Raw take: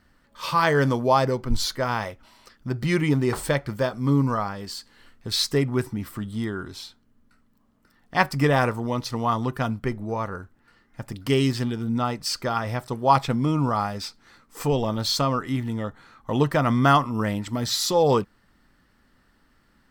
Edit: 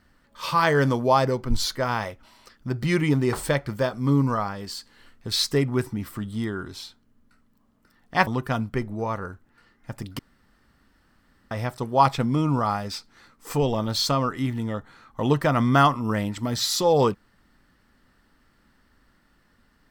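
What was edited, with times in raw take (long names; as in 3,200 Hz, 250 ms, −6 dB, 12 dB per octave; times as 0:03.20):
0:08.27–0:09.37: remove
0:11.29–0:12.61: fill with room tone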